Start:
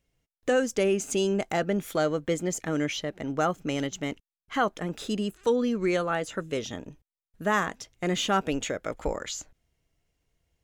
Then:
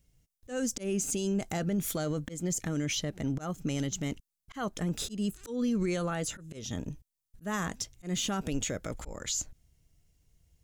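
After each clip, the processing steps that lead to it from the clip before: tone controls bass +12 dB, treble +11 dB; auto swell 0.283 s; limiter -20 dBFS, peak gain reduction 10 dB; gain -2.5 dB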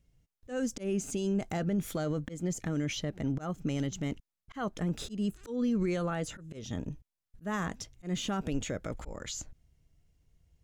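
high shelf 4500 Hz -11 dB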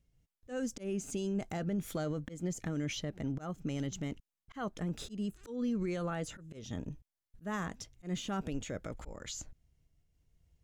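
noise-modulated level, depth 50%; gain -1.5 dB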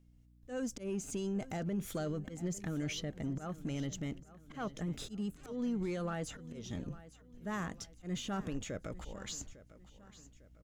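hum 60 Hz, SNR 25 dB; in parallel at -5 dB: soft clip -39 dBFS, distortion -8 dB; on the sum: feedback echo 0.852 s, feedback 43%, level -17 dB; gain -3.5 dB

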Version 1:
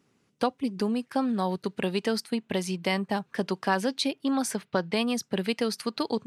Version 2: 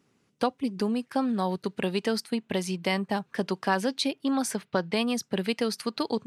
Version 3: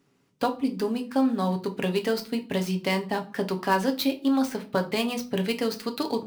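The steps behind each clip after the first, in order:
nothing audible
switching dead time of 0.053 ms; on a send at -4.5 dB: reverb RT60 0.40 s, pre-delay 7 ms

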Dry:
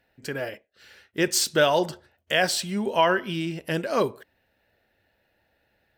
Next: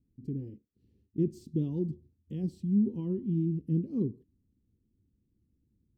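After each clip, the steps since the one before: inverse Chebyshev low-pass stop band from 580 Hz, stop band 40 dB; gain +3.5 dB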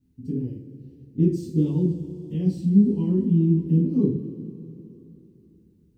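two-slope reverb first 0.38 s, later 3.3 s, from -18 dB, DRR -9.5 dB

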